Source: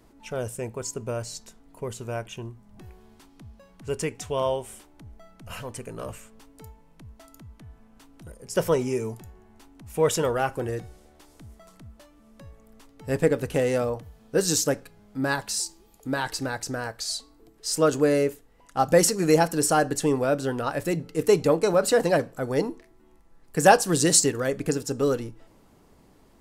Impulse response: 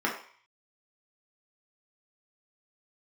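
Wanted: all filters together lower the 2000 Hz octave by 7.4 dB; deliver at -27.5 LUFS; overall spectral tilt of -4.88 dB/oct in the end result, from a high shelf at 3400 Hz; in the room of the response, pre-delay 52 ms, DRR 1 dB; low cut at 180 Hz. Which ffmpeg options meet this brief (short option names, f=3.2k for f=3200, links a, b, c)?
-filter_complex "[0:a]highpass=180,equalizer=f=2k:t=o:g=-8.5,highshelf=f=3.4k:g=-6.5,asplit=2[a][b];[1:a]atrim=start_sample=2205,adelay=52[c];[b][c]afir=irnorm=-1:irlink=0,volume=-12dB[d];[a][d]amix=inputs=2:normalize=0,volume=-3.5dB"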